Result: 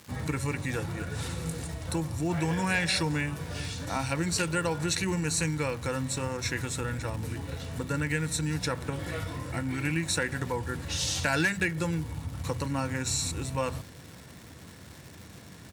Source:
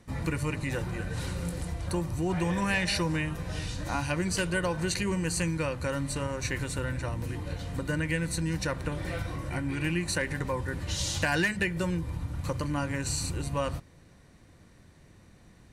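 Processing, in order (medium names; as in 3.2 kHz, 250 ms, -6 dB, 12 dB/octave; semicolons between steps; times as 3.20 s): high-pass 77 Hz 24 dB/octave; treble shelf 4 kHz +4 dB; reverse; upward compressor, threshold -38 dBFS; reverse; crackle 370 per s -39 dBFS; pitch shift -1 st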